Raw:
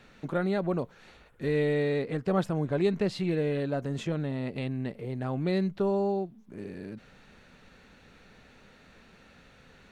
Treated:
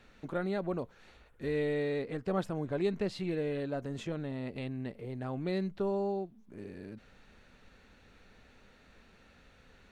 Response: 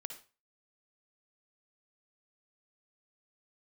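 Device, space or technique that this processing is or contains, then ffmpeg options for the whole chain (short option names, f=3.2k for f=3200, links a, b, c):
low shelf boost with a cut just above: -af "lowshelf=f=110:g=6,equalizer=f=150:t=o:w=0.71:g=-5.5,volume=-5dB"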